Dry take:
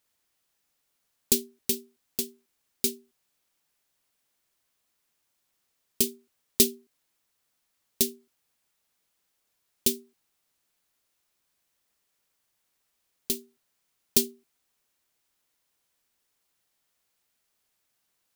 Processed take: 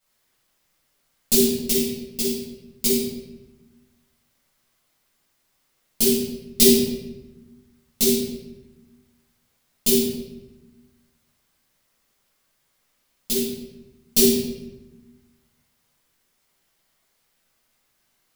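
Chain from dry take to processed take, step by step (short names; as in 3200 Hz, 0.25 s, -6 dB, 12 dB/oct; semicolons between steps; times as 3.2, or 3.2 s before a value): shoebox room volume 530 m³, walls mixed, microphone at 7.1 m; gain -5 dB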